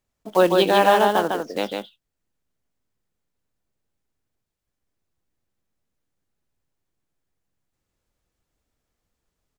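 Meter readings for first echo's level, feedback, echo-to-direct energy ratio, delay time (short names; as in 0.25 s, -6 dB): -4.0 dB, no steady repeat, -4.0 dB, 0.152 s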